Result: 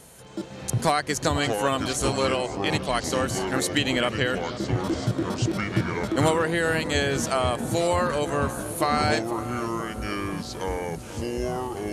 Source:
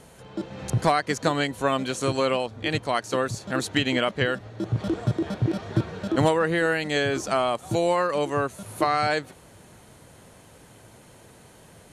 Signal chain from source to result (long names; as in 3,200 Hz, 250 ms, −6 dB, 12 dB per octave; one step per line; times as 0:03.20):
delay with pitch and tempo change per echo 267 ms, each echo −6 semitones, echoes 3, each echo −6 dB
high-shelf EQ 5,900 Hz +12 dB
feedback echo with a low-pass in the loop 490 ms, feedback 71%, low-pass 1,300 Hz, level −12 dB
level −1.5 dB